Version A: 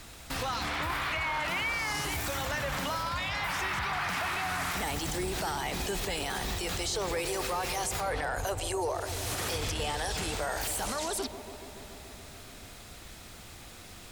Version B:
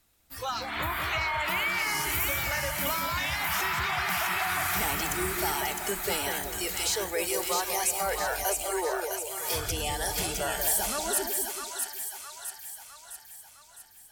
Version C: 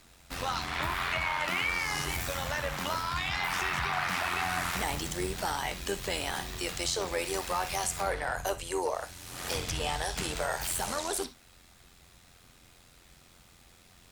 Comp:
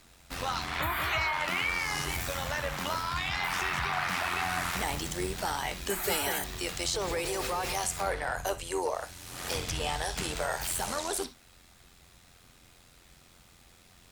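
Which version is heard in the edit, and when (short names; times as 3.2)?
C
0.81–1.33 from B
5.9–6.44 from B
6.94–7.75 from A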